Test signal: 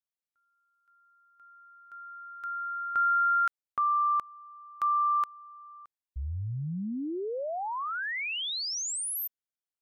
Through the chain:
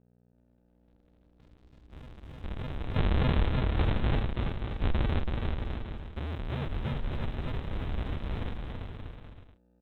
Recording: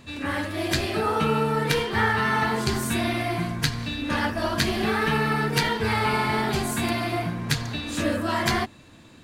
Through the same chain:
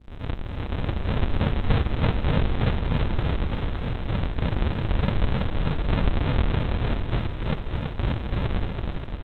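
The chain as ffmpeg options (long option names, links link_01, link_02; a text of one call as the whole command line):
ffmpeg -i in.wav -af "aresample=8000,acrusher=samples=41:mix=1:aa=0.000001:lfo=1:lforange=41:lforate=3.3,aresample=44100,aeval=exprs='val(0)+0.002*(sin(2*PI*60*n/s)+sin(2*PI*2*60*n/s)/2+sin(2*PI*3*60*n/s)/3+sin(2*PI*4*60*n/s)/4+sin(2*PI*5*60*n/s)/5)':channel_layout=same,aeval=exprs='sgn(val(0))*max(abs(val(0))-0.00168,0)':channel_layout=same,aecho=1:1:330|577.5|763.1|902.3|1007:0.631|0.398|0.251|0.158|0.1" out.wav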